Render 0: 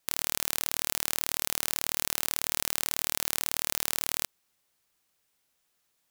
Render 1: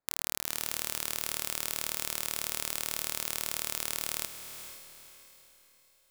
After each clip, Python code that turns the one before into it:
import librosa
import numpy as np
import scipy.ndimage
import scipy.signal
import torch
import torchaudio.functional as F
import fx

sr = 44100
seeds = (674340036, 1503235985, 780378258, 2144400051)

y = fx.wiener(x, sr, points=15)
y = fx.echo_diffused(y, sr, ms=480, feedback_pct=40, wet_db=-9.5)
y = F.gain(torch.from_numpy(y), -4.0).numpy()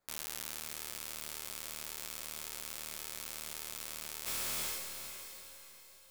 y = fx.over_compress(x, sr, threshold_db=-41.0, ratio=-0.5)
y = fx.ensemble(y, sr)
y = F.gain(torch.from_numpy(y), 4.0).numpy()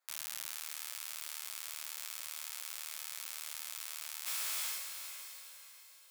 y = scipy.signal.sosfilt(scipy.signal.butter(2, 1000.0, 'highpass', fs=sr, output='sos'), x)